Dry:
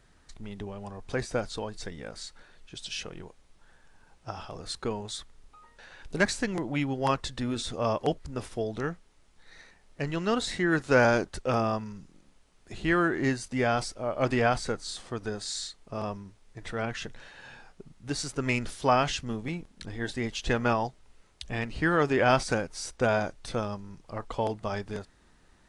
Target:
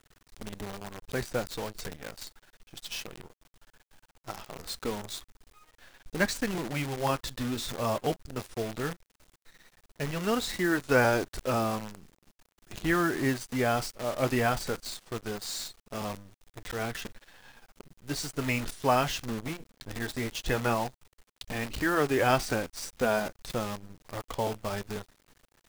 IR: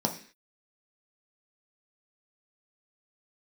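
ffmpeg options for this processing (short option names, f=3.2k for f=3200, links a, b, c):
-filter_complex "[0:a]asplit=2[a][b];[b]acrusher=bits=2:mode=log:mix=0:aa=0.000001,volume=-10dB[c];[a][c]amix=inputs=2:normalize=0,flanger=delay=2.3:depth=6.6:regen=-62:speed=0.18:shape=triangular,acrusher=bits=7:dc=4:mix=0:aa=0.000001"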